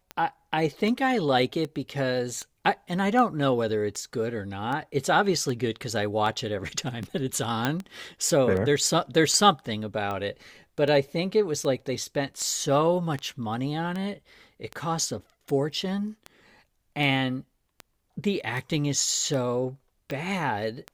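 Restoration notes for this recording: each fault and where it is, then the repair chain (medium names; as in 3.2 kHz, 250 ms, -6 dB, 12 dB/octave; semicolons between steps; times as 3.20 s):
tick 78 rpm -20 dBFS
7.65 s: pop -10 dBFS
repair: de-click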